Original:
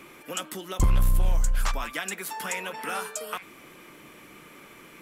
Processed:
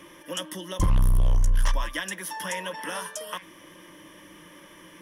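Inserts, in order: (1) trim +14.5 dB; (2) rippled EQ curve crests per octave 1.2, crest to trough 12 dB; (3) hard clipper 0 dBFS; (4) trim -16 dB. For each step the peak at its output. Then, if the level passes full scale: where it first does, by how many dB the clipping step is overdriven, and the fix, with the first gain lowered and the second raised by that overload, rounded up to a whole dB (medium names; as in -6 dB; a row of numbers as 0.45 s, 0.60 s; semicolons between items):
-0.5 dBFS, +5.5 dBFS, 0.0 dBFS, -16.0 dBFS; step 2, 5.5 dB; step 1 +8.5 dB, step 4 -10 dB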